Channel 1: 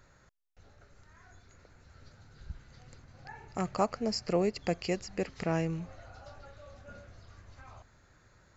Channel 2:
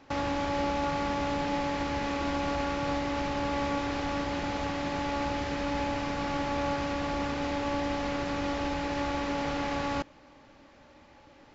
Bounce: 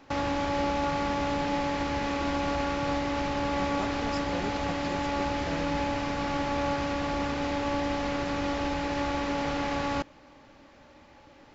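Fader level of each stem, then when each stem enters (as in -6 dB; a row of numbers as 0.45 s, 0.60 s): -8.5 dB, +1.5 dB; 0.00 s, 0.00 s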